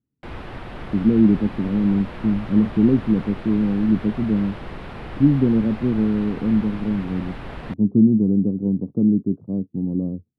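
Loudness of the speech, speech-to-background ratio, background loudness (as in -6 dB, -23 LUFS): -20.5 LUFS, 15.5 dB, -36.0 LUFS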